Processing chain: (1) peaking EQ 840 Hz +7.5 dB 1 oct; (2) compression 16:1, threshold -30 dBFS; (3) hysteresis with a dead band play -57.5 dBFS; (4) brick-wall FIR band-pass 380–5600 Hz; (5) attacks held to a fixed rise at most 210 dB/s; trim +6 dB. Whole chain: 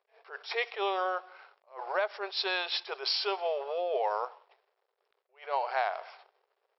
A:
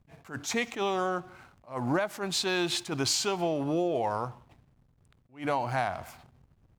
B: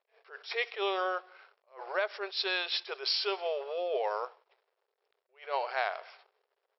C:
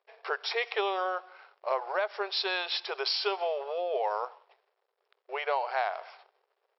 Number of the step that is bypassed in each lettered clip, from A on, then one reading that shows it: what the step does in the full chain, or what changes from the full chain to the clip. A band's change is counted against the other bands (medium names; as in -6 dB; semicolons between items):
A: 4, 250 Hz band +17.0 dB; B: 1, 1 kHz band -3.5 dB; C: 5, momentary loudness spread change -6 LU